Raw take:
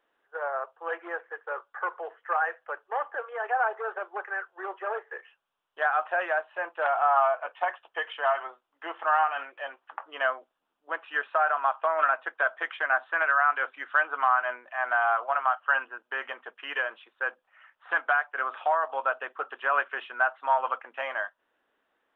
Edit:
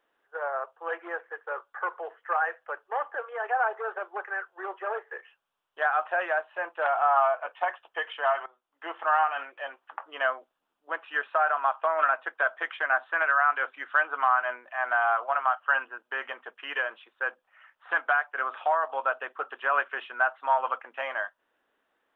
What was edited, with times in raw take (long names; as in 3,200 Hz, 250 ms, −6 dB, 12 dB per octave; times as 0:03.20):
0:08.46–0:08.89: fade in, from −18 dB